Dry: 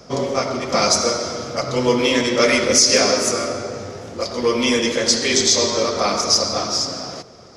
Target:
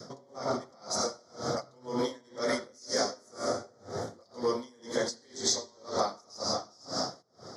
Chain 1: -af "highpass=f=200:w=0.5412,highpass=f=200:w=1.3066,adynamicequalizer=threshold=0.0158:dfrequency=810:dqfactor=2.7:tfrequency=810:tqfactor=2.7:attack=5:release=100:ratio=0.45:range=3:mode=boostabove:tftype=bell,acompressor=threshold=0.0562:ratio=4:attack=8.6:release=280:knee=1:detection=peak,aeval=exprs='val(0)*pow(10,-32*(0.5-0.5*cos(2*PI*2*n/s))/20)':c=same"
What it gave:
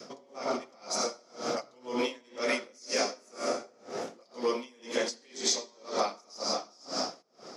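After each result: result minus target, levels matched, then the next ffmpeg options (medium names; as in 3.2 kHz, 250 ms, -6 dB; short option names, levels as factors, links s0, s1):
125 Hz band -11.0 dB; 2 kHz band +4.0 dB
-af "highpass=f=94:w=0.5412,highpass=f=94:w=1.3066,adynamicequalizer=threshold=0.0158:dfrequency=810:dqfactor=2.7:tfrequency=810:tqfactor=2.7:attack=5:release=100:ratio=0.45:range=3:mode=boostabove:tftype=bell,acompressor=threshold=0.0562:ratio=4:attack=8.6:release=280:knee=1:detection=peak,aeval=exprs='val(0)*pow(10,-32*(0.5-0.5*cos(2*PI*2*n/s))/20)':c=same"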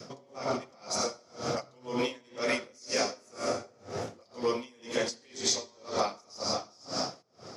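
2 kHz band +3.5 dB
-af "highpass=f=94:w=0.5412,highpass=f=94:w=1.3066,adynamicequalizer=threshold=0.0158:dfrequency=810:dqfactor=2.7:tfrequency=810:tqfactor=2.7:attack=5:release=100:ratio=0.45:range=3:mode=boostabove:tftype=bell,asuperstop=centerf=2600:order=4:qfactor=1.7,acompressor=threshold=0.0562:ratio=4:attack=8.6:release=280:knee=1:detection=peak,aeval=exprs='val(0)*pow(10,-32*(0.5-0.5*cos(2*PI*2*n/s))/20)':c=same"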